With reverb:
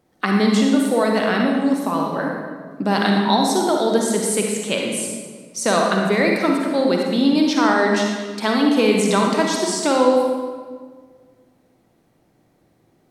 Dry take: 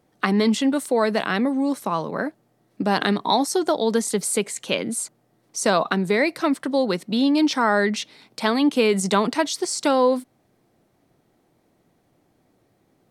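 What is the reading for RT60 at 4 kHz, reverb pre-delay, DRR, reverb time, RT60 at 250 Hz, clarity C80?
1.1 s, 40 ms, 0.0 dB, 1.6 s, 2.1 s, 3.0 dB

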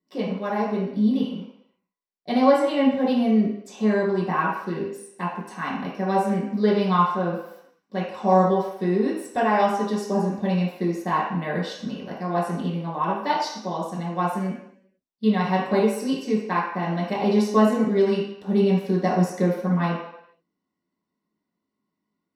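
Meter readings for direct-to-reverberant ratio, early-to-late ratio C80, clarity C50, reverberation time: -6.5 dB, 6.0 dB, 2.5 dB, 0.75 s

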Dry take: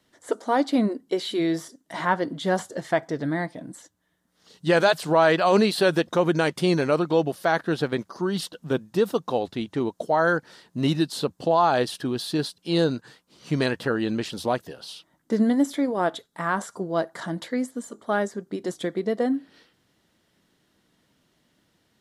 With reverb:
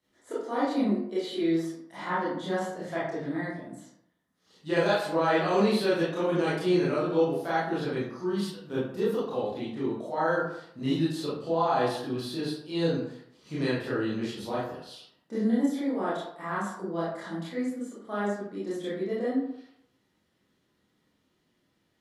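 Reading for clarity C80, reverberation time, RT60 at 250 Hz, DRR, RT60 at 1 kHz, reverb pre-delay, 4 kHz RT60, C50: 5.5 dB, 0.70 s, 0.65 s, -9.5 dB, 0.75 s, 22 ms, 0.40 s, 1.0 dB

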